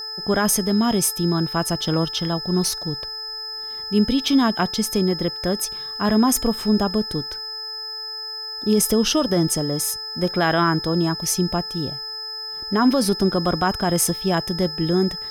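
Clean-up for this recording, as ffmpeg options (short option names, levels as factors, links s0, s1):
-af "bandreject=f=436.5:t=h:w=4,bandreject=f=873:t=h:w=4,bandreject=f=1309.5:t=h:w=4,bandreject=f=1746:t=h:w=4,bandreject=f=5100:w=30,agate=range=0.0891:threshold=0.0631"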